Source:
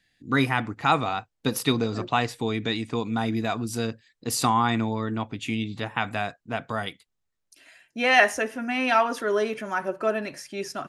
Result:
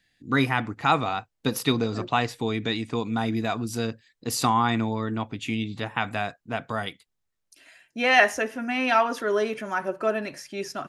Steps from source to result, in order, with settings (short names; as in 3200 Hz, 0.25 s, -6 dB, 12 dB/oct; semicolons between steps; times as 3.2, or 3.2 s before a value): dynamic EQ 9000 Hz, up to -4 dB, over -52 dBFS, Q 2.7